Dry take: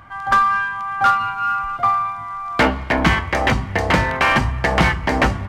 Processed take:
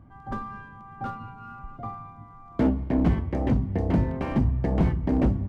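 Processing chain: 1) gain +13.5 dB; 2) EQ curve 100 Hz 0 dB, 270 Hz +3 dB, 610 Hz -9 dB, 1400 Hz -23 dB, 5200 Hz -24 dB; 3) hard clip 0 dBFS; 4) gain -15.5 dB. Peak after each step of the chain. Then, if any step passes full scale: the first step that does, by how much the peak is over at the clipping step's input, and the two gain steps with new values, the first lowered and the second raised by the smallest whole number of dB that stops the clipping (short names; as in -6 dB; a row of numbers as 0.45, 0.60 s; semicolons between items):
+9.0, +9.0, 0.0, -15.5 dBFS; step 1, 9.0 dB; step 1 +4.5 dB, step 4 -6.5 dB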